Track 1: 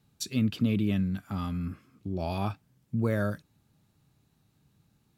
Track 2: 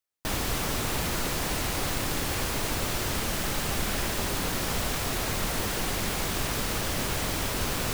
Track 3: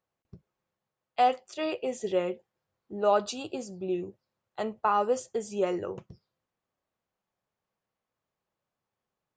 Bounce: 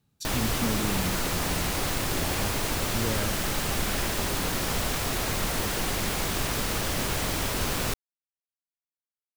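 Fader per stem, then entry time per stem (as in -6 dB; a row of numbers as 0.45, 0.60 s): -4.5 dB, +1.0 dB, off; 0.00 s, 0.00 s, off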